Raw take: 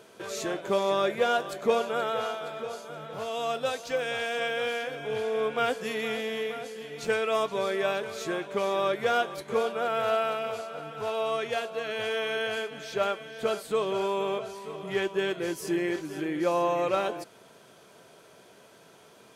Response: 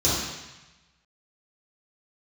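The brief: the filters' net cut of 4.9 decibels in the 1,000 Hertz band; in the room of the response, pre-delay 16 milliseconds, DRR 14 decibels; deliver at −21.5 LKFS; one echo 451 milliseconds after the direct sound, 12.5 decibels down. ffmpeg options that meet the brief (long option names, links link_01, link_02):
-filter_complex "[0:a]equalizer=frequency=1000:width_type=o:gain=-7.5,aecho=1:1:451:0.237,asplit=2[link_01][link_02];[1:a]atrim=start_sample=2205,adelay=16[link_03];[link_02][link_03]afir=irnorm=-1:irlink=0,volume=-28.5dB[link_04];[link_01][link_04]amix=inputs=2:normalize=0,volume=9.5dB"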